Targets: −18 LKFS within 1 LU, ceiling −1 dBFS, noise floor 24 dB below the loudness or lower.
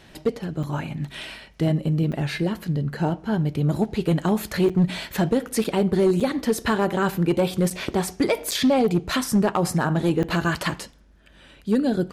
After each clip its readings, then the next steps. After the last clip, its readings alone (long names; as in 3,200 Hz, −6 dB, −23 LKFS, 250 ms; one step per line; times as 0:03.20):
share of clipped samples 0.9%; peaks flattened at −13.0 dBFS; number of dropouts 8; longest dropout 6.0 ms; integrated loudness −23.5 LKFS; sample peak −13.0 dBFS; target loudness −18.0 LKFS
→ clipped peaks rebuilt −13 dBFS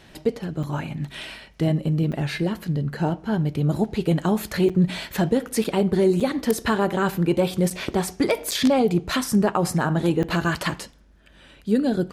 share of clipped samples 0.0%; number of dropouts 8; longest dropout 6.0 ms
→ repair the gap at 0:00.63/0:02.12/0:04.69/0:05.64/0:06.20/0:07.70/0:08.51/0:10.23, 6 ms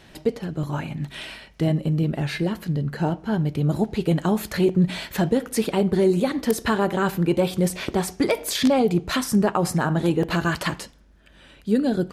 number of dropouts 0; integrated loudness −23.0 LKFS; sample peak −4.0 dBFS; target loudness −18.0 LKFS
→ level +5 dB
brickwall limiter −1 dBFS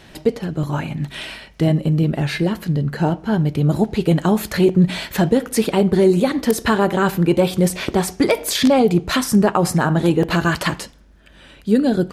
integrated loudness −18.0 LKFS; sample peak −1.0 dBFS; background noise floor −46 dBFS